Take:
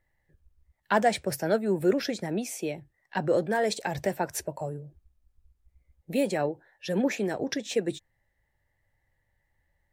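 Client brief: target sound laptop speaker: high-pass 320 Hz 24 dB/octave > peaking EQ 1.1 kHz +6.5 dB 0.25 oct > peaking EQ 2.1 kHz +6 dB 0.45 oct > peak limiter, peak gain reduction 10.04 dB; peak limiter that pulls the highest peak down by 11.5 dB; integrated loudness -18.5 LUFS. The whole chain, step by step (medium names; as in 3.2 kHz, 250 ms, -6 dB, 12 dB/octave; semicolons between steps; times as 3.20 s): peak limiter -21.5 dBFS; high-pass 320 Hz 24 dB/octave; peaking EQ 1.1 kHz +6.5 dB 0.25 oct; peaking EQ 2.1 kHz +6 dB 0.45 oct; trim +19.5 dB; peak limiter -9 dBFS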